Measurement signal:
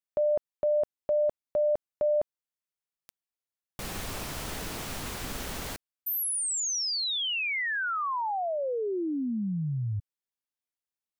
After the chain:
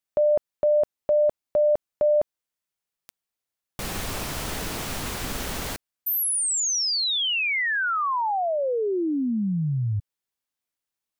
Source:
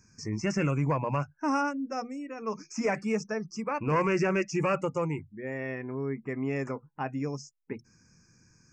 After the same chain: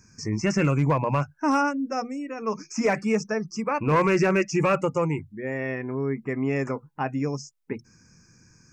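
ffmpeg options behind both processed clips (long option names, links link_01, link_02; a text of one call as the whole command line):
ffmpeg -i in.wav -af "asoftclip=type=hard:threshold=-19.5dB,volume=5.5dB" out.wav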